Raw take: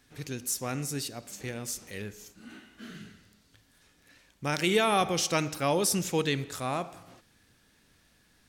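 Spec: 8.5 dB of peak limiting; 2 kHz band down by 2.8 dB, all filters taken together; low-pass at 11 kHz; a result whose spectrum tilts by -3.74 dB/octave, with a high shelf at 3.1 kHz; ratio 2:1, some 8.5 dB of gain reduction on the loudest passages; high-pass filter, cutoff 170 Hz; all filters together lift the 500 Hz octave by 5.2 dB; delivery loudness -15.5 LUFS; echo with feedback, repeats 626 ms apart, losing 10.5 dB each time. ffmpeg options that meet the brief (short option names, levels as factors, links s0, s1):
-af "highpass=170,lowpass=11000,equalizer=f=500:t=o:g=6.5,equalizer=f=2000:t=o:g=-7.5,highshelf=f=3100:g=8,acompressor=threshold=0.0282:ratio=2,alimiter=limit=0.0631:level=0:latency=1,aecho=1:1:626|1252|1878:0.299|0.0896|0.0269,volume=10"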